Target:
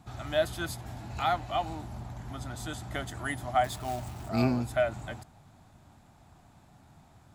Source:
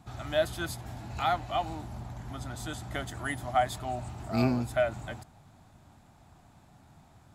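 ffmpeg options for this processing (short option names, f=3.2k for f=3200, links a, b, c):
-filter_complex "[0:a]asettb=1/sr,asplit=3[a][b][c];[a]atrim=end=3.644[d];[b]atrim=start=3.64:end=4.29,asetpts=PTS-STARTPTS,afade=t=in:d=0.004:c=qsin,afade=t=out:st=0.646:d=0.004:c=qsin,acrusher=bits=3:mode=log:mix=0:aa=0.000001[e];[c]atrim=start=4.286[f];[d][e]acrossfade=d=0.004:c1=hsin:c2=qsin[g];[g][f]acrossfade=d=0.004:c1=qsin:c2=hsin"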